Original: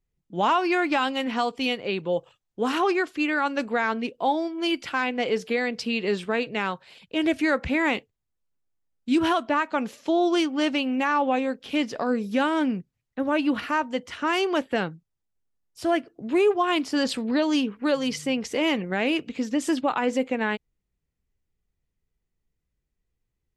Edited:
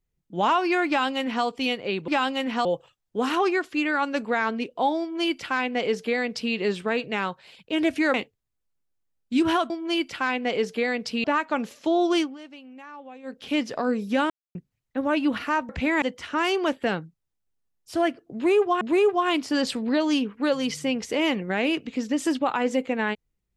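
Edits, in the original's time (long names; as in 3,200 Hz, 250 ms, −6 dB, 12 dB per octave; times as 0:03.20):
0:00.88–0:01.45: duplicate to 0:02.08
0:04.43–0:05.97: duplicate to 0:09.46
0:07.57–0:07.90: move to 0:13.91
0:10.44–0:11.60: duck −19.5 dB, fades 0.15 s
0:12.52–0:12.77: silence
0:16.23–0:16.70: repeat, 2 plays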